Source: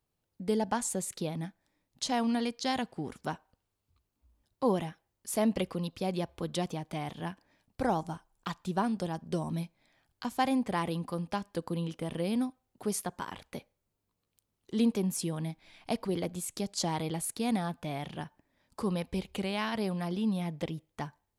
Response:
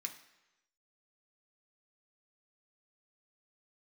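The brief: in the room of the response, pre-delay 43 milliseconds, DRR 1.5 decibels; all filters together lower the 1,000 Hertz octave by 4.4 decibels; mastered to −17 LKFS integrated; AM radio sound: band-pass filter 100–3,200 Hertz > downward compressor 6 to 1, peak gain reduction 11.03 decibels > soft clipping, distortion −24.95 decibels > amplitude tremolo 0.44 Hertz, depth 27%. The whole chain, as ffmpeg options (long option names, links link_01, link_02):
-filter_complex "[0:a]equalizer=frequency=1000:width_type=o:gain=-6,asplit=2[link_01][link_02];[1:a]atrim=start_sample=2205,adelay=43[link_03];[link_02][link_03]afir=irnorm=-1:irlink=0,volume=0.5dB[link_04];[link_01][link_04]amix=inputs=2:normalize=0,highpass=100,lowpass=3200,acompressor=threshold=-32dB:ratio=6,asoftclip=threshold=-25dB,tremolo=f=0.44:d=0.27,volume=23.5dB"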